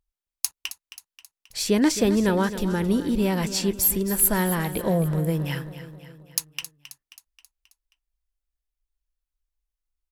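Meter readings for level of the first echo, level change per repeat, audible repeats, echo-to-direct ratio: -13.0 dB, -5.5 dB, 4, -11.5 dB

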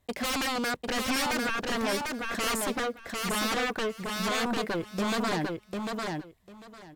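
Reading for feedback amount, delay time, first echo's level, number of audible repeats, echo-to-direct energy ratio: 17%, 748 ms, -3.5 dB, 3, -3.5 dB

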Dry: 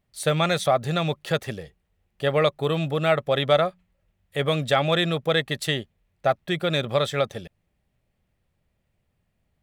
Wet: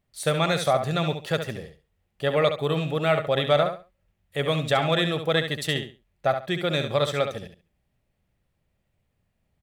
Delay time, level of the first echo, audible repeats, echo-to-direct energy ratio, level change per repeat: 69 ms, -8.0 dB, 3, -8.0 dB, -13.0 dB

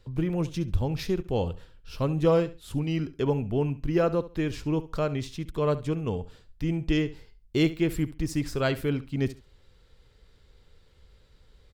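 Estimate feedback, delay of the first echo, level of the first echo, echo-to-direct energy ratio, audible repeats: 22%, 69 ms, -16.0 dB, -16.0 dB, 2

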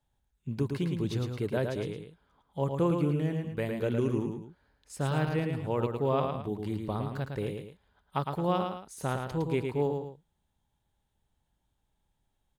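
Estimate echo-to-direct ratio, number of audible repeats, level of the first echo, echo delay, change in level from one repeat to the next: -4.5 dB, 2, -5.0 dB, 110 ms, -8.0 dB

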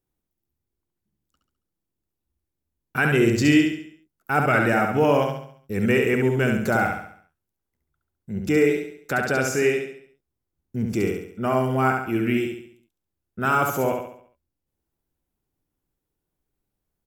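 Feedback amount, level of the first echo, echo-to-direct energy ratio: 45%, -4.0 dB, -3.0 dB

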